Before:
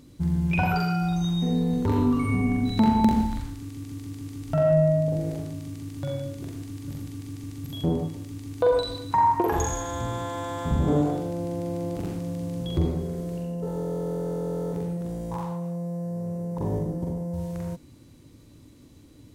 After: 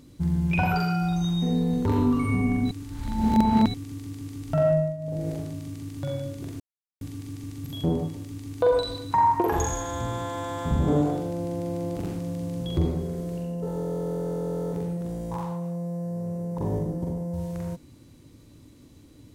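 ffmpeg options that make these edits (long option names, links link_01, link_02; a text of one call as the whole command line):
ffmpeg -i in.wav -filter_complex "[0:a]asplit=7[link_01][link_02][link_03][link_04][link_05][link_06][link_07];[link_01]atrim=end=2.712[link_08];[link_02]atrim=start=2.708:end=3.742,asetpts=PTS-STARTPTS,areverse[link_09];[link_03]atrim=start=3.738:end=4.97,asetpts=PTS-STARTPTS,afade=type=out:start_time=0.922:duration=0.31:silence=0.188365[link_10];[link_04]atrim=start=4.97:end=4.98,asetpts=PTS-STARTPTS,volume=-14.5dB[link_11];[link_05]atrim=start=4.98:end=6.6,asetpts=PTS-STARTPTS,afade=type=in:duration=0.31:silence=0.188365,afade=type=out:start_time=1.616:duration=0.004:curve=hsin[link_12];[link_06]atrim=start=6.6:end=7.01,asetpts=PTS-STARTPTS,volume=0[link_13];[link_07]atrim=start=7.01,asetpts=PTS-STARTPTS,afade=type=in:duration=0.004:curve=hsin[link_14];[link_08][link_09]acrossfade=duration=0.004:curve1=hsin:curve2=hsin[link_15];[link_10][link_11][link_12][link_13][link_14]concat=n=5:v=0:a=1[link_16];[link_15][link_16]acrossfade=duration=0.004:curve1=hsin:curve2=hsin" out.wav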